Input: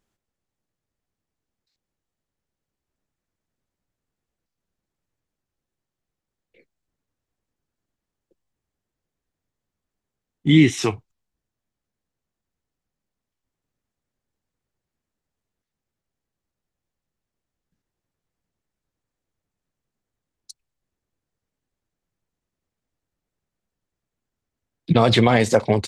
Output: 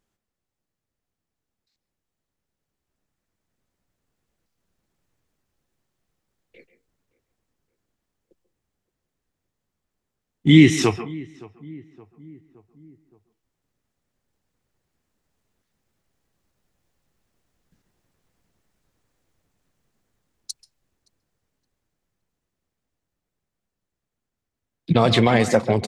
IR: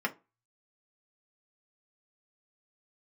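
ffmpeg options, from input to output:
-filter_complex "[0:a]asplit=2[a][b];[1:a]atrim=start_sample=2205,adelay=135[c];[b][c]afir=irnorm=-1:irlink=0,volume=-19dB[d];[a][d]amix=inputs=2:normalize=0,dynaudnorm=f=420:g=21:m=13.5dB,asplit=2[e][f];[f]adelay=569,lowpass=f=1.5k:p=1,volume=-21.5dB,asplit=2[g][h];[h]adelay=569,lowpass=f=1.5k:p=1,volume=0.54,asplit=2[i][j];[j]adelay=569,lowpass=f=1.5k:p=1,volume=0.54,asplit=2[k][l];[l]adelay=569,lowpass=f=1.5k:p=1,volume=0.54[m];[g][i][k][m]amix=inputs=4:normalize=0[n];[e][n]amix=inputs=2:normalize=0,volume=-1dB"

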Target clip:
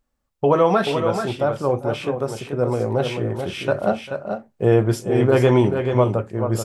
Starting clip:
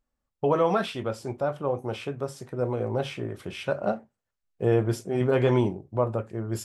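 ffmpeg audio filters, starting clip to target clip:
-af "aecho=1:1:396|434:0.1|0.447,volume=6.5dB"

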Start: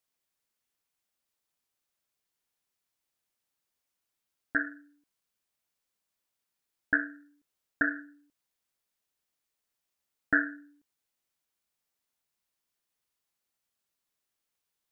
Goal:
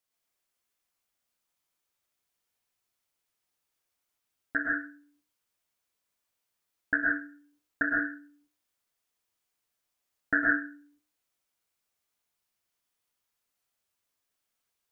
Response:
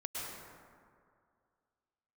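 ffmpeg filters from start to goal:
-filter_complex "[0:a]bandreject=f=60:t=h:w=6,bandreject=f=120:t=h:w=6,bandreject=f=180:t=h:w=6,bandreject=f=240:t=h:w=6,bandreject=f=300:t=h:w=6[a];[1:a]atrim=start_sample=2205,afade=t=out:st=0.23:d=0.01,atrim=end_sample=10584[b];[a][b]afir=irnorm=-1:irlink=0,volume=3dB"

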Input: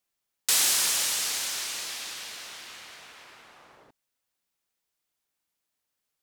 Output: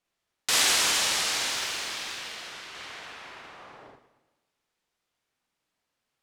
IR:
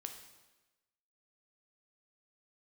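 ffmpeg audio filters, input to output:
-filter_complex "[0:a]aemphasis=mode=reproduction:type=50fm,asettb=1/sr,asplit=3[a][b][c];[a]atrim=end=1.494[d];[b]atrim=start=1.49:end=2.75,asetpts=PTS-STARTPTS,afade=t=in:d=0.004:c=qsin,afade=t=out:st=1.256:d=0.004:c=qsin,aeval=exprs='0.0562*(cos(1*acos(clip(val(0)/0.0562,-1,1)))-cos(1*PI/2))+0.00316*(cos(7*acos(clip(val(0)/0.0562,-1,1)))-cos(7*PI/2))':c=same[e];[c]atrim=start=2.746[f];[d][e]acrossfade=d=0.004:c1=hsin:c2=qsin[g];[g][f]acrossfade=d=0.004:c1=qsin:c2=hsin,asplit=2[h][i];[1:a]atrim=start_sample=2205,adelay=48[j];[i][j]afir=irnorm=-1:irlink=0,volume=3dB[k];[h][k]amix=inputs=2:normalize=0,volume=4dB"

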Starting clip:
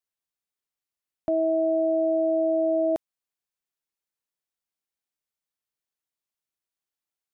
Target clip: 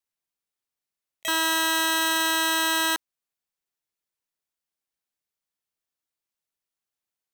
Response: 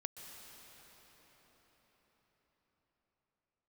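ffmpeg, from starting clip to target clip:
-filter_complex "[0:a]aeval=exprs='(mod(10.6*val(0)+1,2)-1)/10.6':c=same,asplit=2[a][b];[b]asetrate=88200,aresample=44100,atempo=0.5,volume=-3dB[c];[a][c]amix=inputs=2:normalize=0"

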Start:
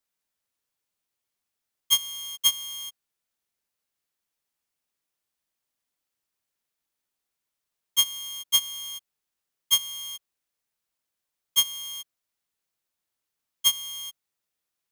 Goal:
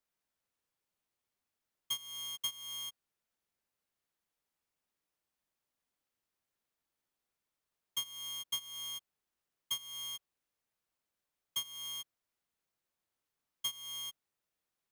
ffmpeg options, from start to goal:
-af "highshelf=f=2.4k:g=-7,acompressor=threshold=-35dB:ratio=8"

